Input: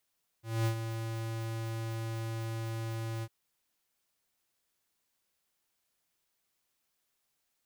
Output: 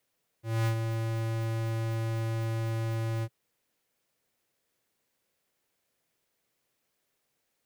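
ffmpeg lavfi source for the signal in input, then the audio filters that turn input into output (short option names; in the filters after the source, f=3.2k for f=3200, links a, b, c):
-f lavfi -i "aevalsrc='0.0398*(2*lt(mod(113*t,1),0.5)-1)':d=2.851:s=44100,afade=t=in:d=0.227,afade=t=out:st=0.227:d=0.088:silence=0.376,afade=t=out:st=2.8:d=0.051"
-filter_complex "[0:a]equalizer=f=125:t=o:w=1:g=7,equalizer=f=250:t=o:w=1:g=4,equalizer=f=500:t=o:w=1:g=9,equalizer=f=2k:t=o:w=1:g=4,acrossover=split=740|4000[a][b][c];[a]asoftclip=type=tanh:threshold=-24.5dB[d];[d][b][c]amix=inputs=3:normalize=0"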